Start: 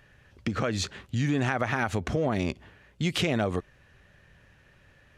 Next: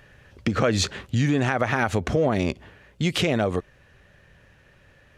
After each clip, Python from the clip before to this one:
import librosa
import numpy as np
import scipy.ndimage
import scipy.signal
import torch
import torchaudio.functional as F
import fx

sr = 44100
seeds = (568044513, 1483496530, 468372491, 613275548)

y = fx.peak_eq(x, sr, hz=510.0, db=3.0, octaves=0.72)
y = fx.rider(y, sr, range_db=10, speed_s=0.5)
y = y * librosa.db_to_amplitude(5.0)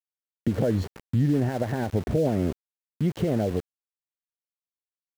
y = scipy.signal.lfilter(np.full(36, 1.0 / 36), 1.0, x)
y = np.where(np.abs(y) >= 10.0 ** (-35.0 / 20.0), y, 0.0)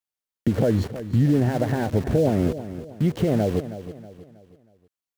y = fx.echo_feedback(x, sr, ms=319, feedback_pct=40, wet_db=-13)
y = y * librosa.db_to_amplitude(3.5)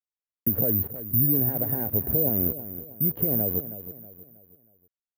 y = fx.spacing_loss(x, sr, db_at_10k=41)
y = (np.kron(y[::3], np.eye(3)[0]) * 3)[:len(y)]
y = y * librosa.db_to_amplitude(-7.0)